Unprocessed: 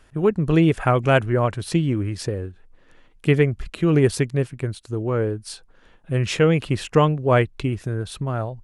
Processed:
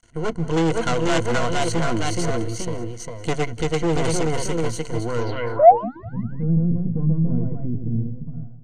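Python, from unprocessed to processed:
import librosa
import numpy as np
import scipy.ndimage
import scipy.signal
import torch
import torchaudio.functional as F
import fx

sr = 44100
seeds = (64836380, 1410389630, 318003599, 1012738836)

p1 = fx.fade_out_tail(x, sr, length_s=0.75)
p2 = np.maximum(p1, 0.0)
p3 = fx.spec_paint(p2, sr, seeds[0], shape='rise', start_s=5.59, length_s=0.46, low_hz=550.0, high_hz=2000.0, level_db=-13.0)
p4 = fx.echo_pitch(p3, sr, ms=523, semitones=1, count=2, db_per_echo=-3.0)
p5 = fx.rider(p4, sr, range_db=4, speed_s=2.0)
p6 = p4 + F.gain(torch.from_numpy(p5), 0.0).numpy()
p7 = fx.ripple_eq(p6, sr, per_octave=1.9, db=13)
p8 = p7 + fx.echo_feedback(p7, sr, ms=187, feedback_pct=51, wet_db=-20.0, dry=0)
p9 = np.clip(10.0 ** (7.5 / 20.0) * p8, -1.0, 1.0) / 10.0 ** (7.5 / 20.0)
p10 = fx.filter_sweep_lowpass(p9, sr, from_hz=7400.0, to_hz=200.0, start_s=5.18, end_s=5.96, q=3.9)
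y = F.gain(torch.from_numpy(p10), -7.5).numpy()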